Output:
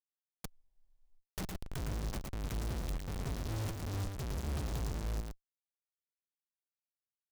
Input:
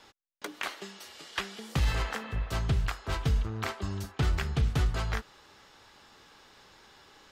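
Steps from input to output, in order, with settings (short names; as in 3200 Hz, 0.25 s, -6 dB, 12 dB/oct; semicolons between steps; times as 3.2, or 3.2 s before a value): inverse Chebyshev band-stop 440–1900 Hz, stop band 60 dB; Schmitt trigger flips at -42.5 dBFS; echo 0.111 s -4 dB; spectral freeze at 0.5, 0.67 s; noise-modulated delay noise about 4200 Hz, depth 0.07 ms; gain -5 dB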